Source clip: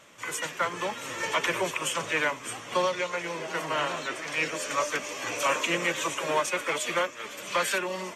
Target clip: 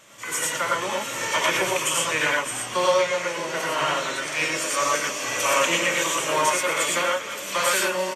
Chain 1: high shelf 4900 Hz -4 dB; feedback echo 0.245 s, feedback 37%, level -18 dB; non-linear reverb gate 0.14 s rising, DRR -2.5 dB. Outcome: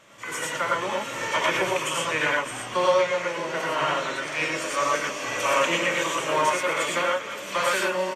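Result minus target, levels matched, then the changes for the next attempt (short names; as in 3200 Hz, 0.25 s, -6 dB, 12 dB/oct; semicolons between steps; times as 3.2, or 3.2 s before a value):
8000 Hz band -6.0 dB
change: high shelf 4900 Hz +7.5 dB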